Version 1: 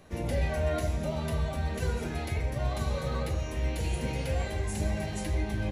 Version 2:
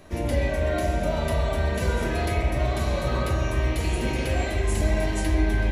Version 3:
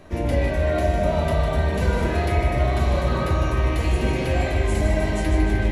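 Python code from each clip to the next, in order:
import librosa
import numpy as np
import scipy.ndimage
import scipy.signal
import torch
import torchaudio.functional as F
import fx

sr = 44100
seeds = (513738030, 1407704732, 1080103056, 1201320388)

y1 = x + 0.32 * np.pad(x, (int(3.1 * sr / 1000.0), 0))[:len(x)]
y1 = fx.rider(y1, sr, range_db=10, speed_s=0.5)
y1 = fx.rev_spring(y1, sr, rt60_s=3.4, pass_ms=(41,), chirp_ms=75, drr_db=1.0)
y1 = F.gain(torch.from_numpy(y1), 5.0).numpy()
y2 = fx.high_shelf(y1, sr, hz=4200.0, db=-8.0)
y2 = fx.echo_feedback(y2, sr, ms=153, feedback_pct=56, wet_db=-7.5)
y2 = F.gain(torch.from_numpy(y2), 3.0).numpy()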